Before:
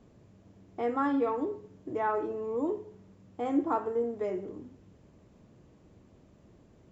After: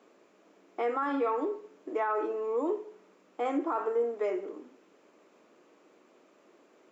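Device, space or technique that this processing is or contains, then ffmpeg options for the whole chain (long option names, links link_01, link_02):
laptop speaker: -af "highpass=frequency=320:width=0.5412,highpass=frequency=320:width=1.3066,equalizer=frequency=1300:width_type=o:width=0.57:gain=6,equalizer=frequency=2400:width_type=o:width=0.46:gain=5,alimiter=limit=-24dB:level=0:latency=1:release=36,volume=2.5dB"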